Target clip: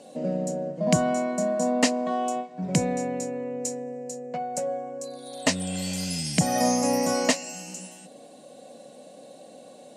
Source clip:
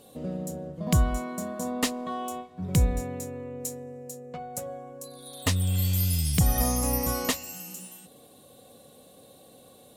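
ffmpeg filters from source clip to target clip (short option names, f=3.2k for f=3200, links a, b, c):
-af "highpass=f=180:w=0.5412,highpass=f=180:w=1.3066,equalizer=f=410:t=q:w=4:g=-6,equalizer=f=620:t=q:w=4:g=7,equalizer=f=1.2k:t=q:w=4:g=-9,equalizer=f=3.5k:t=q:w=4:g=-9,lowpass=f=8k:w=0.5412,lowpass=f=8k:w=1.3066,volume=6.5dB"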